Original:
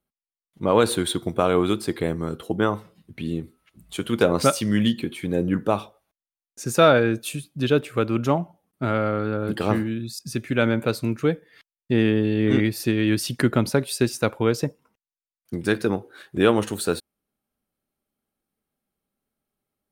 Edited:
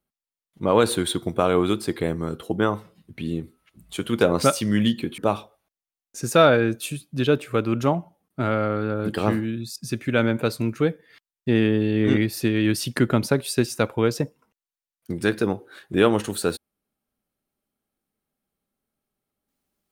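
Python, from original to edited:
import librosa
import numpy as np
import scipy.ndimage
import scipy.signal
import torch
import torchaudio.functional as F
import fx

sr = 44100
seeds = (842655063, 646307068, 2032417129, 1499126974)

y = fx.edit(x, sr, fx.cut(start_s=5.18, length_s=0.43), tone=tone)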